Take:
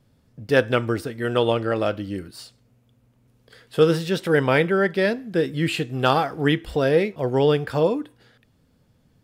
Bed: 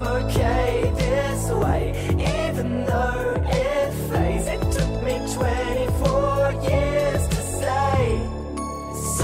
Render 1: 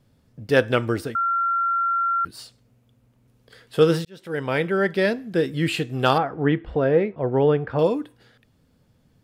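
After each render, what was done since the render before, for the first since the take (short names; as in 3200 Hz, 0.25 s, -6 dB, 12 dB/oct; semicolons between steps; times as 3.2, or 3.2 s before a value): 1.15–2.25 bleep 1370 Hz -19 dBFS; 4.05–4.92 fade in; 6.18–7.79 LPF 1700 Hz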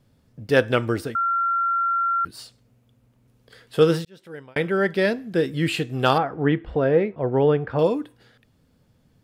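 3.88–4.56 fade out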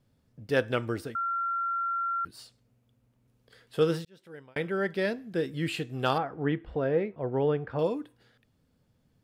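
gain -8 dB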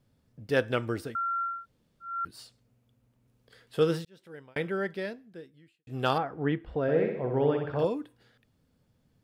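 1.54–2.12 room tone, crossfade 0.24 s; 4.68–5.87 fade out quadratic; 6.82–7.85 flutter echo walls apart 10.9 m, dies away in 0.75 s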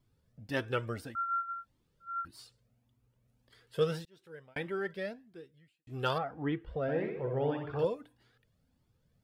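cascading flanger rising 1.7 Hz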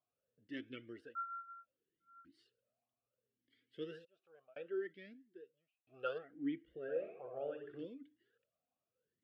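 vowel sweep a-i 0.69 Hz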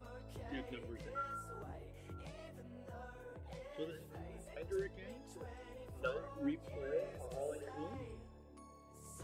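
add bed -29.5 dB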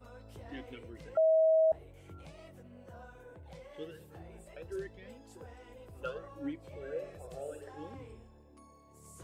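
1.17–1.72 bleep 640 Hz -22 dBFS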